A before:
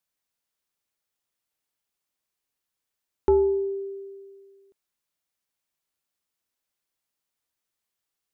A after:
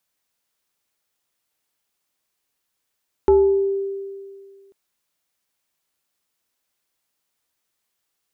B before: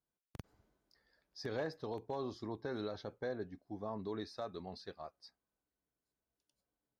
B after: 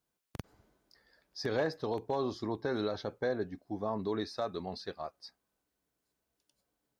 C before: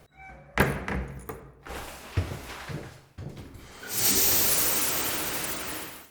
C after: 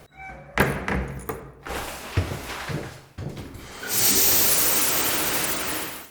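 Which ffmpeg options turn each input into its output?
-filter_complex "[0:a]lowshelf=frequency=130:gain=-3.5,asplit=2[link_01][link_02];[link_02]alimiter=limit=-19.5dB:level=0:latency=1:release=490,volume=3dB[link_03];[link_01][link_03]amix=inputs=2:normalize=0"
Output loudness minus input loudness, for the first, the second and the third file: +5.0, +7.5, +4.0 LU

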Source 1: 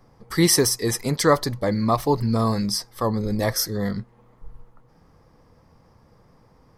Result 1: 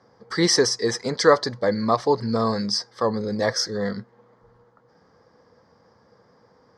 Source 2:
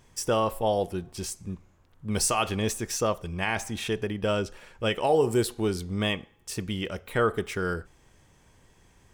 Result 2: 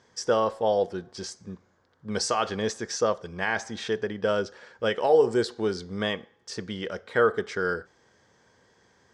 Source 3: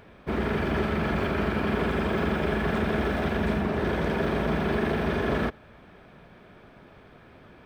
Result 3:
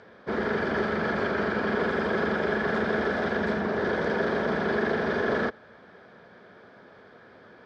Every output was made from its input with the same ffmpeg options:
-af "highpass=150,equalizer=frequency=150:width_type=q:width=4:gain=-6,equalizer=frequency=300:width_type=q:width=4:gain=-4,equalizer=frequency=480:width_type=q:width=4:gain=5,equalizer=frequency=1600:width_type=q:width=4:gain=6,equalizer=frequency=2600:width_type=q:width=4:gain=-9,equalizer=frequency=4800:width_type=q:width=4:gain=4,lowpass=frequency=6500:width=0.5412,lowpass=frequency=6500:width=1.3066"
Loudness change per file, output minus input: −0.5, +1.0, 0.0 LU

